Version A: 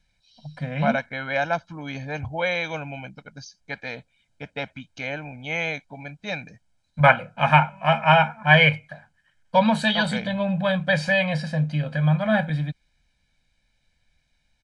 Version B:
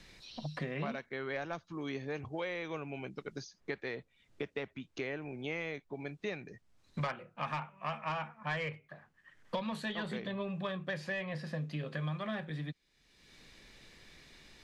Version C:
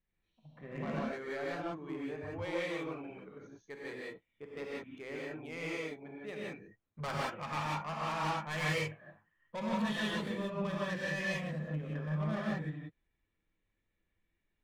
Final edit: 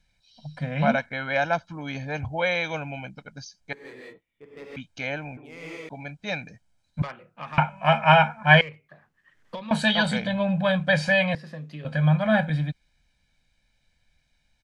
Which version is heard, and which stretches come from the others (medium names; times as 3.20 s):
A
3.73–4.76 s: from C
5.37–5.89 s: from C
7.02–7.58 s: from B
8.61–9.71 s: from B
11.35–11.85 s: from B